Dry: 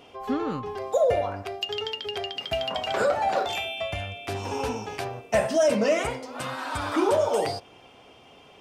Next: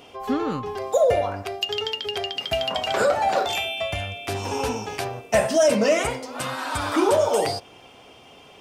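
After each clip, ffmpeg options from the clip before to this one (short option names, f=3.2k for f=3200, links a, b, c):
-af "highshelf=f=5.2k:g=6,volume=3dB"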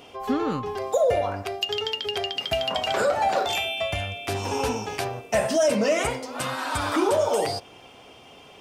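-af "alimiter=limit=-13.5dB:level=0:latency=1:release=120"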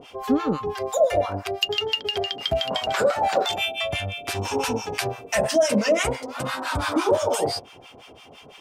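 -filter_complex "[0:a]acrossover=split=890[a][b];[a]aeval=exprs='val(0)*(1-1/2+1/2*cos(2*PI*5.9*n/s))':c=same[c];[b]aeval=exprs='val(0)*(1-1/2-1/2*cos(2*PI*5.9*n/s))':c=same[d];[c][d]amix=inputs=2:normalize=0,volume=6dB"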